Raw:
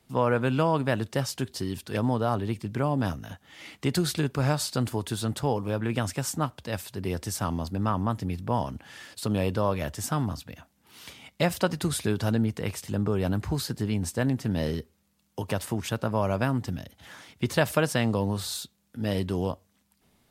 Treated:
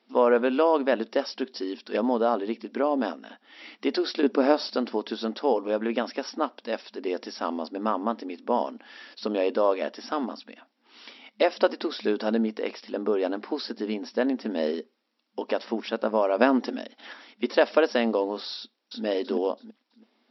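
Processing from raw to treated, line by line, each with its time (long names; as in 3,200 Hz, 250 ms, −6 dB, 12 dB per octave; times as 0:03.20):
0:04.23–0:04.70: low-shelf EQ 430 Hz +10.5 dB
0:16.39–0:17.13: clip gain +5.5 dB
0:18.58–0:19.04: delay throw 330 ms, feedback 30%, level 0 dB
whole clip: brick-wall band-pass 210–5,700 Hz; dynamic equaliser 510 Hz, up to +6 dB, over −41 dBFS, Q 1.1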